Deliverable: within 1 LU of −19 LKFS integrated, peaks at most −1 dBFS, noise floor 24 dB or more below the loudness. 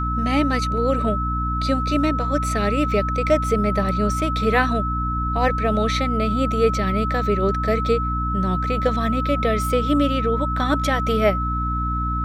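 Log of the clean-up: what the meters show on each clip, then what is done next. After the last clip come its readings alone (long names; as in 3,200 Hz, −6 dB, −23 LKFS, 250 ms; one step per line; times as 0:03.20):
mains hum 60 Hz; hum harmonics up to 300 Hz; level of the hum −22 dBFS; interfering tone 1,300 Hz; level of the tone −24 dBFS; integrated loudness −21.0 LKFS; sample peak −4.5 dBFS; target loudness −19.0 LKFS
→ hum removal 60 Hz, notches 5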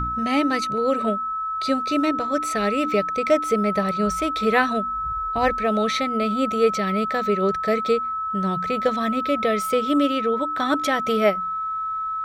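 mains hum none found; interfering tone 1,300 Hz; level of the tone −24 dBFS
→ notch filter 1,300 Hz, Q 30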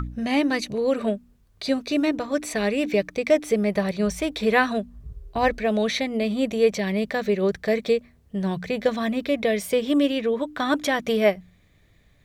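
interfering tone none found; integrated loudness −24.0 LKFS; sample peak −6.5 dBFS; target loudness −19.0 LKFS
→ level +5 dB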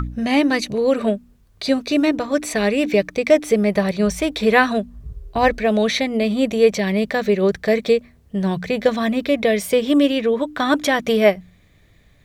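integrated loudness −19.0 LKFS; sample peak −1.5 dBFS; background noise floor −54 dBFS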